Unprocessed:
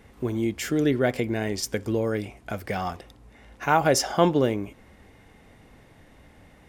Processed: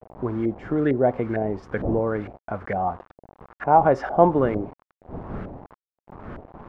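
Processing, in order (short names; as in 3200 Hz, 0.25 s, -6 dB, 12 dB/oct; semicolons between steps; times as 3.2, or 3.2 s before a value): wind noise 280 Hz -40 dBFS; bit-crush 7-bit; LFO low-pass saw up 2.2 Hz 610–1600 Hz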